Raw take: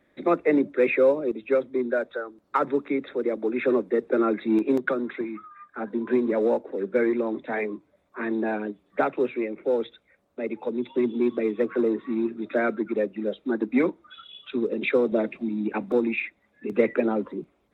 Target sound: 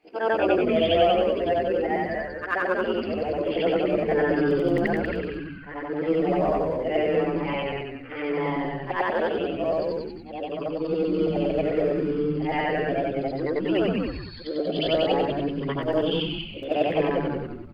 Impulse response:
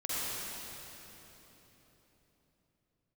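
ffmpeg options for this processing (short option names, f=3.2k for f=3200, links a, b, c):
-filter_complex "[0:a]afftfilt=real='re':imag='-im':win_size=8192:overlap=0.75,asetrate=57191,aresample=44100,atempo=0.771105,asplit=5[a][b][c][d][e];[b]adelay=188,afreqshift=-140,volume=-3.5dB[f];[c]adelay=376,afreqshift=-280,volume=-12.9dB[g];[d]adelay=564,afreqshift=-420,volume=-22.2dB[h];[e]adelay=752,afreqshift=-560,volume=-31.6dB[i];[a][f][g][h][i]amix=inputs=5:normalize=0,volume=3.5dB"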